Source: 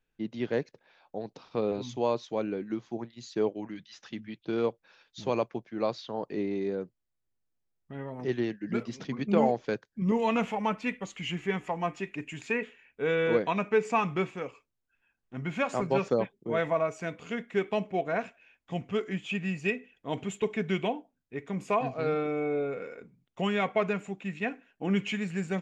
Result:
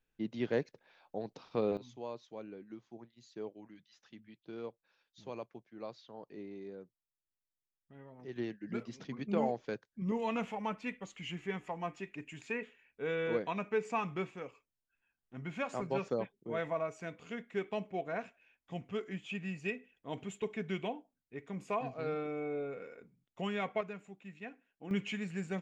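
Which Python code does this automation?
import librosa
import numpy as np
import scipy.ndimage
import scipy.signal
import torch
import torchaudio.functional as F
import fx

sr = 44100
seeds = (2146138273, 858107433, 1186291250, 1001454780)

y = fx.gain(x, sr, db=fx.steps((0.0, -3.0), (1.77, -15.0), (8.36, -8.0), (23.81, -14.5), (24.91, -6.5)))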